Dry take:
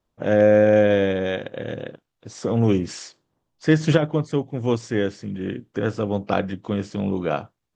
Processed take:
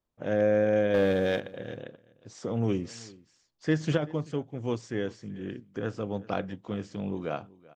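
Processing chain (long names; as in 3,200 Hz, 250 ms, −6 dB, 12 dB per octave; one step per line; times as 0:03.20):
0:00.94–0:01.40: leveller curve on the samples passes 2
single-tap delay 384 ms −22 dB
level −9 dB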